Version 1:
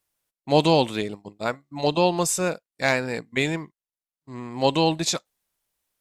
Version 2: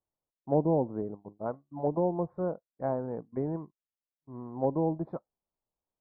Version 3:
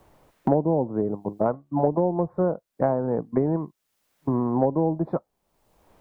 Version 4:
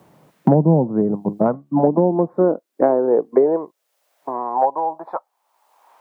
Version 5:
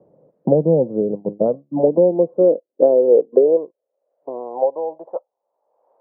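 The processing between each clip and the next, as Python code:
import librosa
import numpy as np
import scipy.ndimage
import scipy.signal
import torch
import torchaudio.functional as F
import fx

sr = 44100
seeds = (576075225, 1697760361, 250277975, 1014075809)

y1 = scipy.signal.sosfilt(scipy.signal.cheby2(4, 50, 2600.0, 'lowpass', fs=sr, output='sos'), x)
y1 = fx.env_lowpass_down(y1, sr, base_hz=670.0, full_db=-17.5)
y1 = y1 * 10.0 ** (-6.0 / 20.0)
y2 = fx.band_squash(y1, sr, depth_pct=100)
y2 = y2 * 10.0 ** (7.0 / 20.0)
y3 = fx.filter_sweep_highpass(y2, sr, from_hz=160.0, to_hz=900.0, start_s=1.38, end_s=4.84, q=2.8)
y3 = y3 * 10.0 ** (4.0 / 20.0)
y4 = fx.lowpass_res(y3, sr, hz=520.0, q=4.9)
y4 = y4 * 10.0 ** (-7.0 / 20.0)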